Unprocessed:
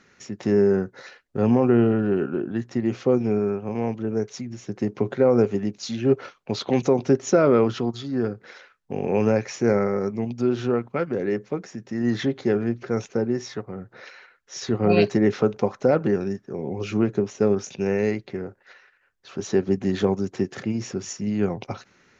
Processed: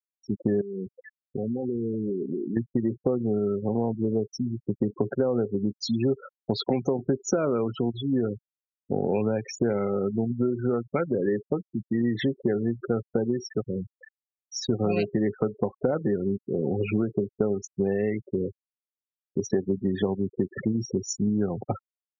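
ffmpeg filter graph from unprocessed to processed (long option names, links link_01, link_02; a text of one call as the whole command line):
ffmpeg -i in.wav -filter_complex "[0:a]asettb=1/sr,asplit=3[link_01][link_02][link_03];[link_01]atrim=end=0.614[link_04];[link_02]atrim=start=0.61:end=2.57,asetpts=PTS-STARTPTS,afade=type=in:duration=0.004:curve=qsin,afade=type=out:start_time=1.956:duration=0.004:curve=qsin,equalizer=frequency=71:width=0.89:gain=-3.5,acompressor=threshold=-30dB:ratio=8:attack=3.2:release=140:knee=1:detection=peak[link_05];[link_03]atrim=start=2.566[link_06];[link_04][link_05]acrossfade=duration=0.004:curve1=hsin:curve2=qsin[link_07];[link_07][link_06]acrossfade=duration=0.004:curve1=qsin:curve2=hsin,afftfilt=real='re*gte(hypot(re,im),0.0501)':imag='im*gte(hypot(re,im),0.0501)':win_size=1024:overlap=0.75,adynamicequalizer=threshold=0.02:dfrequency=850:dqfactor=1.1:tfrequency=850:tqfactor=1.1:attack=5:release=100:ratio=0.375:range=2:mode=cutabove:tftype=bell,acompressor=threshold=-26dB:ratio=10,volume=5dB" out.wav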